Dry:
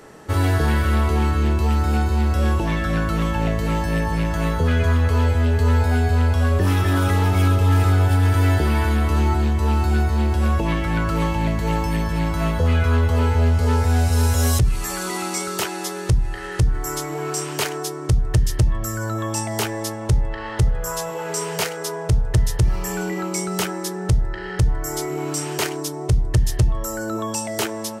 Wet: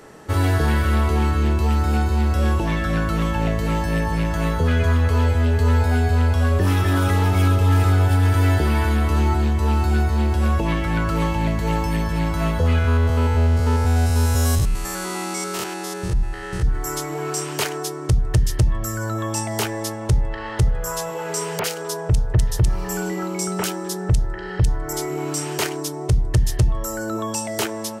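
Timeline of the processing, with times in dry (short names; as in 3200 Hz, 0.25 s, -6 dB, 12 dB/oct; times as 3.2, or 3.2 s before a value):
12.78–16.65 stepped spectrum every 0.1 s
21.59–24.93 bands offset in time lows, highs 50 ms, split 2400 Hz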